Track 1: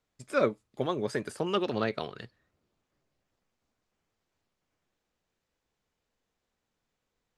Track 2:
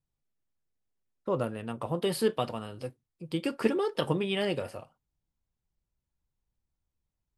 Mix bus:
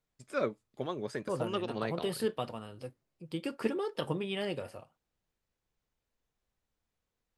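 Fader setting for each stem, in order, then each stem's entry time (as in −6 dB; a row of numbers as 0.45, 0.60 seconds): −6.0, −5.5 decibels; 0.00, 0.00 seconds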